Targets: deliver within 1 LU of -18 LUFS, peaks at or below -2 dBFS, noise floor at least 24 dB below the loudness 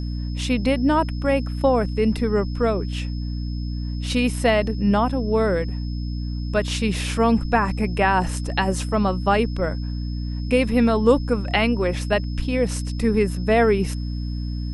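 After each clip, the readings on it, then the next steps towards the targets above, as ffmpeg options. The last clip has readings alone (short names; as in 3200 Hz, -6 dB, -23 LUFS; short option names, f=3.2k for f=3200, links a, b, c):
hum 60 Hz; harmonics up to 300 Hz; hum level -24 dBFS; steady tone 5200 Hz; tone level -44 dBFS; loudness -22.0 LUFS; peak -3.5 dBFS; loudness target -18.0 LUFS
-> -af "bandreject=f=60:t=h:w=6,bandreject=f=120:t=h:w=6,bandreject=f=180:t=h:w=6,bandreject=f=240:t=h:w=6,bandreject=f=300:t=h:w=6"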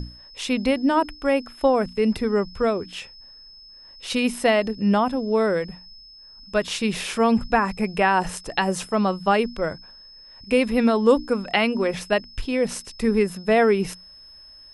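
hum none; steady tone 5200 Hz; tone level -44 dBFS
-> -af "bandreject=f=5.2k:w=30"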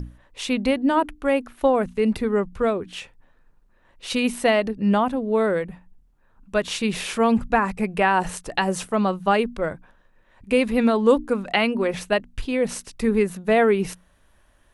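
steady tone none; loudness -22.5 LUFS; peak -5.0 dBFS; loudness target -18.0 LUFS
-> -af "volume=4.5dB,alimiter=limit=-2dB:level=0:latency=1"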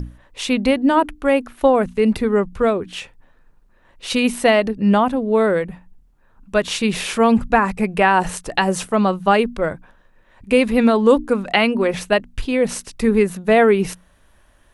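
loudness -18.0 LUFS; peak -2.0 dBFS; noise floor -55 dBFS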